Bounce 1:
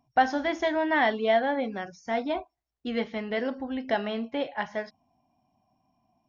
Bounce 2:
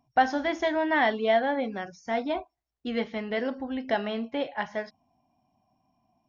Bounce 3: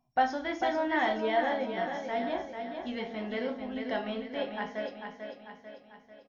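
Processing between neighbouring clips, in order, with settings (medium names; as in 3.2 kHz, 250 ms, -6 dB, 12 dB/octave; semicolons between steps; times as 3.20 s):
no audible change
feedback delay 444 ms, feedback 51%, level -6.5 dB; simulated room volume 180 m³, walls furnished, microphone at 1 m; trim -6.5 dB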